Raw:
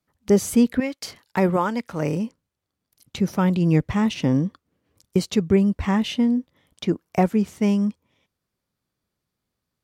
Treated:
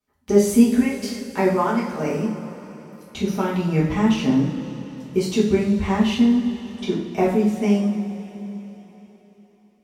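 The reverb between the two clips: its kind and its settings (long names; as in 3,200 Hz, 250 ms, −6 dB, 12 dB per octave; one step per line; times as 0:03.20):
coupled-rooms reverb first 0.54 s, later 4.1 s, from −16 dB, DRR −8.5 dB
level −7 dB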